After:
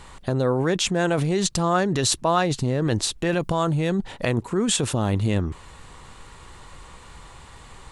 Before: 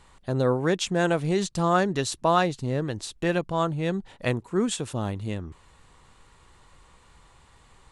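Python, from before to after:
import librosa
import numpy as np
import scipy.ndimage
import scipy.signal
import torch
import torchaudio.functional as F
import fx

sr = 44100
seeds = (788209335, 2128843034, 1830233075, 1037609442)

p1 = fx.high_shelf(x, sr, hz=fx.line((3.39, 6100.0), (3.92, 8700.0)), db=9.0, at=(3.39, 3.92), fade=0.02)
p2 = fx.over_compress(p1, sr, threshold_db=-31.0, ratio=-0.5)
y = p1 + (p2 * 10.0 ** (2.0 / 20.0))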